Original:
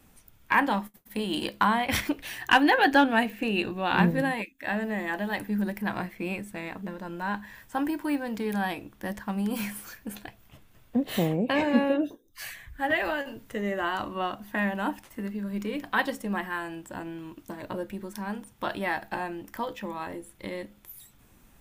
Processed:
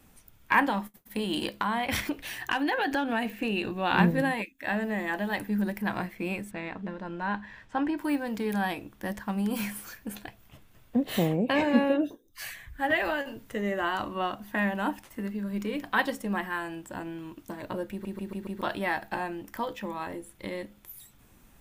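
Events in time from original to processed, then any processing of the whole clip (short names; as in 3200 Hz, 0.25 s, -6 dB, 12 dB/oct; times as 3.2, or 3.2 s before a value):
0.7–3.73 compressor, threshold -24 dBFS
6.51–7.98 LPF 4100 Hz
17.91 stutter in place 0.14 s, 5 plays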